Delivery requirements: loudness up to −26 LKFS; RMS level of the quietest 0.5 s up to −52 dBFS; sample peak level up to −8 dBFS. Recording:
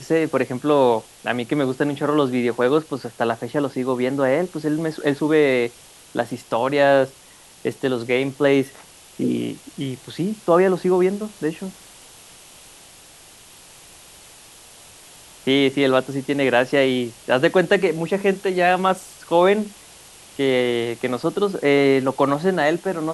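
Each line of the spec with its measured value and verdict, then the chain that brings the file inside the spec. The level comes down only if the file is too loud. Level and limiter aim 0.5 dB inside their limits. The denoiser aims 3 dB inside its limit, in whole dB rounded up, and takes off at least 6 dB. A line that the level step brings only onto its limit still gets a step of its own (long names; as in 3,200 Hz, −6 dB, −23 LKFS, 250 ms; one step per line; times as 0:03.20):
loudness −20.5 LKFS: out of spec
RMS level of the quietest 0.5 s −47 dBFS: out of spec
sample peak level −2.5 dBFS: out of spec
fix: level −6 dB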